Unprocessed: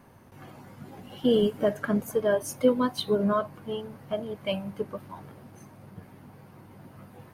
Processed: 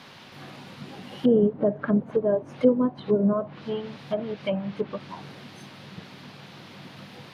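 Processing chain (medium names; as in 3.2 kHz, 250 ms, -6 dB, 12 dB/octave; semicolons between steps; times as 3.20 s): resonant low shelf 110 Hz -8 dB, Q 1.5; band noise 350–4300 Hz -52 dBFS; low-pass that closes with the level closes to 700 Hz, closed at -22.5 dBFS; trim +2.5 dB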